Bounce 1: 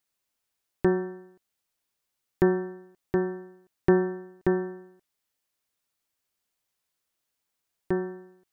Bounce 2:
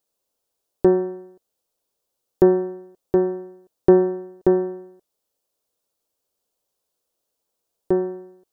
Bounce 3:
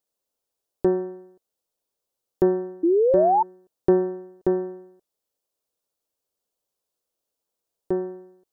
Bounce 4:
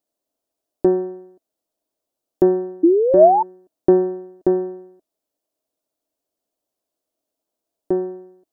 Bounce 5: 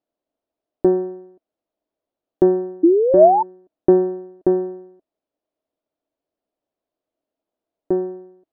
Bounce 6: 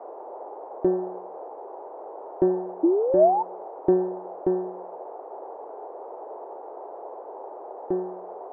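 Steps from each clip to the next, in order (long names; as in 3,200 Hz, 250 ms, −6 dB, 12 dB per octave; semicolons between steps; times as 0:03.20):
octave-band graphic EQ 125/500/2,000 Hz −3/+10/−11 dB; level +3 dB
sound drawn into the spectrogram rise, 0:02.83–0:03.43, 320–920 Hz −13 dBFS; level −5 dB
hollow resonant body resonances 290/640 Hz, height 12 dB, ringing for 30 ms; level −1 dB
high-frequency loss of the air 300 metres; level +1 dB
noise in a band 370–890 Hz −32 dBFS; level −7 dB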